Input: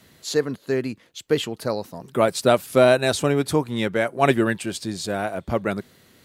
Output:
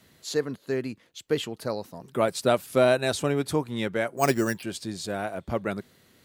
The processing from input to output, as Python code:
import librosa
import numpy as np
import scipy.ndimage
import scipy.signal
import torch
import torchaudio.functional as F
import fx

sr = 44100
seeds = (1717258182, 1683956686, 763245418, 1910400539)

y = fx.resample_bad(x, sr, factor=6, down='filtered', up='hold', at=(4.17, 4.63))
y = F.gain(torch.from_numpy(y), -5.0).numpy()